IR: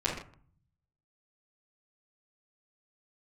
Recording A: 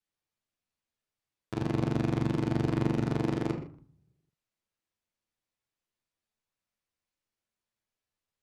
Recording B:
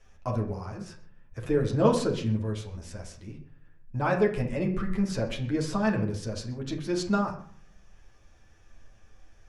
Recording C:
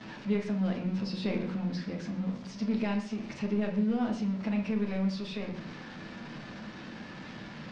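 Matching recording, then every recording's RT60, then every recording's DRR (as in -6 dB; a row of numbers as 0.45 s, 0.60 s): C; no single decay rate, no single decay rate, no single decay rate; -6.0 dB, -1.0 dB, -10.5 dB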